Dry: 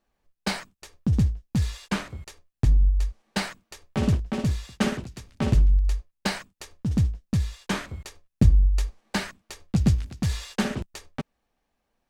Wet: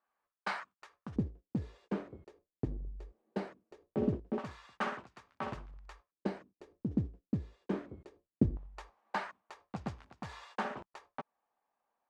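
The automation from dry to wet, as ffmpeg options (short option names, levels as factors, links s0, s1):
-af "asetnsamples=n=441:p=0,asendcmd='1.16 bandpass f 380;4.38 bandpass f 1100;6.12 bandpass f 340;8.57 bandpass f 950',bandpass=f=1200:t=q:w=1.9:csg=0"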